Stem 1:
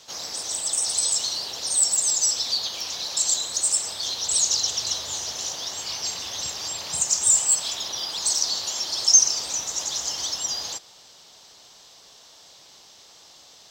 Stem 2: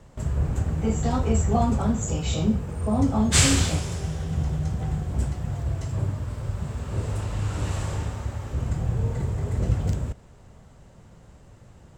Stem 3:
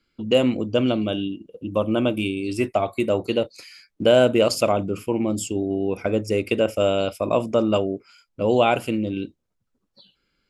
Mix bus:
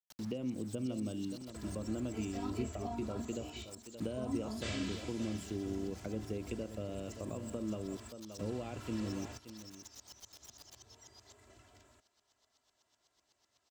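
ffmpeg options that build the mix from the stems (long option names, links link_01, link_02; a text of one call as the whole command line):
ffmpeg -i stem1.wav -i stem2.wav -i stem3.wav -filter_complex "[0:a]asoftclip=type=tanh:threshold=-20dB,aeval=exprs='val(0)*pow(10,-29*if(lt(mod(-8*n/s,1),2*abs(-8)/1000),1-mod(-8*n/s,1)/(2*abs(-8)/1000),(mod(-8*n/s,1)-2*abs(-8)/1000)/(1-2*abs(-8)/1000))/20)':channel_layout=same,volume=-11dB,asplit=2[link_01][link_02];[link_02]volume=-9dB[link_03];[1:a]aecho=1:1:3:0.96,acrossover=split=5000[link_04][link_05];[link_05]acompressor=threshold=-47dB:ratio=4:attack=1:release=60[link_06];[link_04][link_06]amix=inputs=2:normalize=0,highpass=frequency=1400:poles=1,adelay=1300,volume=-2.5dB,asplit=2[link_07][link_08];[link_08]volume=-18dB[link_09];[2:a]highshelf=frequency=3000:gain=-2.5,volume=-9.5dB,asplit=3[link_10][link_11][link_12];[link_11]volume=-16.5dB[link_13];[link_12]apad=whole_len=585532[link_14];[link_07][link_14]sidechaingate=range=-33dB:threshold=-52dB:ratio=16:detection=peak[link_15];[link_01][link_10]amix=inputs=2:normalize=0,aeval=exprs='val(0)*gte(abs(val(0)),0.00562)':channel_layout=same,acompressor=threshold=-31dB:ratio=4,volume=0dB[link_16];[link_03][link_09][link_13]amix=inputs=3:normalize=0,aecho=0:1:574:1[link_17];[link_15][link_16][link_17]amix=inputs=3:normalize=0,acrossover=split=340[link_18][link_19];[link_19]acompressor=threshold=-56dB:ratio=2[link_20];[link_18][link_20]amix=inputs=2:normalize=0" out.wav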